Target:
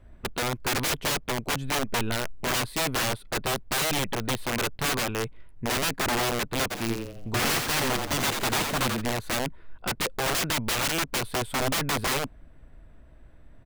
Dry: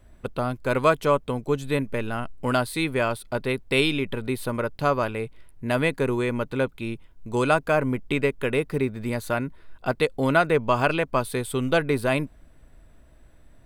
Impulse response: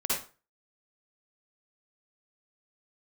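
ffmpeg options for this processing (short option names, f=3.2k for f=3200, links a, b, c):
-filter_complex "[0:a]bass=f=250:g=2,treble=f=4k:g=-11,aeval=exprs='(mod(11.2*val(0)+1,2)-1)/11.2':c=same,asplit=3[a][b][c];[a]afade=t=out:st=6.7:d=0.02[d];[b]asplit=6[e][f][g][h][i][j];[f]adelay=86,afreqshift=100,volume=-5dB[k];[g]adelay=172,afreqshift=200,volume=-13.2dB[l];[h]adelay=258,afreqshift=300,volume=-21.4dB[m];[i]adelay=344,afreqshift=400,volume=-29.5dB[n];[j]adelay=430,afreqshift=500,volume=-37.7dB[o];[e][k][l][m][n][o]amix=inputs=6:normalize=0,afade=t=in:st=6.7:d=0.02,afade=t=out:st=9:d=0.02[p];[c]afade=t=in:st=9:d=0.02[q];[d][p][q]amix=inputs=3:normalize=0"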